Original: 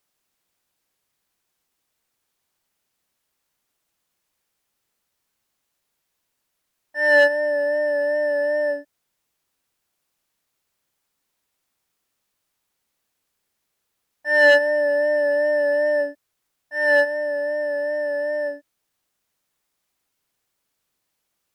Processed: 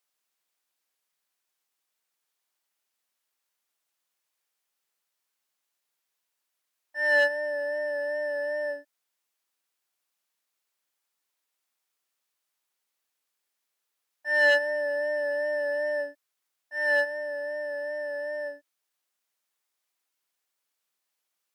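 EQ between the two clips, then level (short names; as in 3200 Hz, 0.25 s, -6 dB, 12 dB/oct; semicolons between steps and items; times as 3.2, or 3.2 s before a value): HPF 730 Hz 6 dB/oct; -5.0 dB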